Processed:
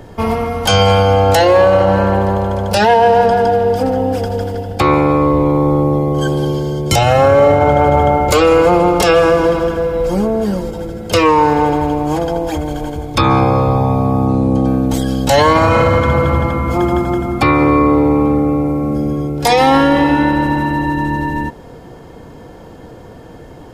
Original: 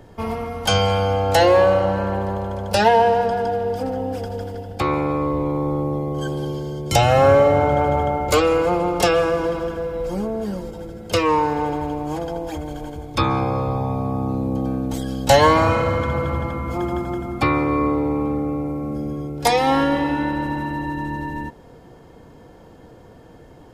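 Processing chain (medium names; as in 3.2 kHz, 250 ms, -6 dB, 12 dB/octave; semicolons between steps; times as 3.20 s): 14.26–14.68 s: steep low-pass 11 kHz 36 dB/octave; loudness maximiser +10.5 dB; trim -1 dB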